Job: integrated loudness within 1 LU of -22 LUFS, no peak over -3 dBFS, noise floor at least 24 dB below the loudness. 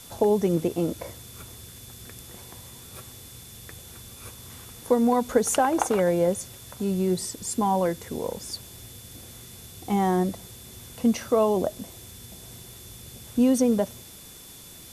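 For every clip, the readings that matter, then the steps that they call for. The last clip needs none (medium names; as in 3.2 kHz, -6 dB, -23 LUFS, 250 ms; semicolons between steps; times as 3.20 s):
steady tone 3.5 kHz; tone level -53 dBFS; noise floor -46 dBFS; noise floor target -49 dBFS; loudness -25.0 LUFS; peak level -8.0 dBFS; loudness target -22.0 LUFS
-> band-stop 3.5 kHz, Q 30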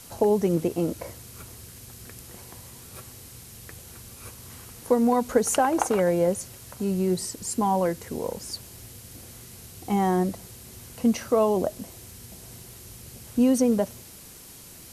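steady tone not found; noise floor -46 dBFS; noise floor target -49 dBFS
-> noise reduction 6 dB, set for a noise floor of -46 dBFS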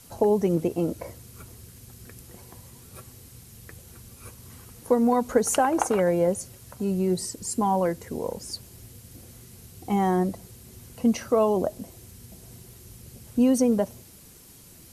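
noise floor -50 dBFS; loudness -25.0 LUFS; peak level -8.0 dBFS; loudness target -22.0 LUFS
-> trim +3 dB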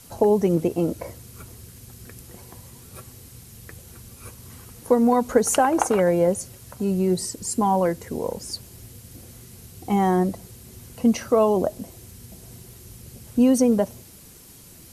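loudness -22.0 LUFS; peak level -5.0 dBFS; noise floor -47 dBFS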